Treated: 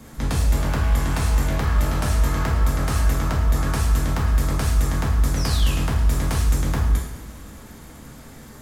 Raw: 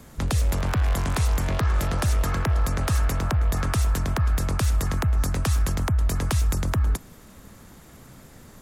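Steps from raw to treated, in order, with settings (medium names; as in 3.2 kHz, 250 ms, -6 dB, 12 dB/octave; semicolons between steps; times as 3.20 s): in parallel at 0 dB: peak limiter -26 dBFS, peak gain reduction 11.5 dB; on the sum: painted sound fall, 5.36–5.73 s, 2.4–6.1 kHz -32 dBFS; two-slope reverb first 0.71 s, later 3.2 s, DRR -4.5 dB; trim -6.5 dB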